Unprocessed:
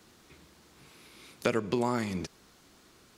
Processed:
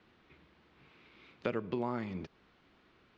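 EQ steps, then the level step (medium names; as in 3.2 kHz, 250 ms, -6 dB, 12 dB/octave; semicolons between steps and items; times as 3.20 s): dynamic bell 2.2 kHz, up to -5 dB, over -51 dBFS, Q 0.99; four-pole ladder low-pass 3.6 kHz, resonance 25%; 0.0 dB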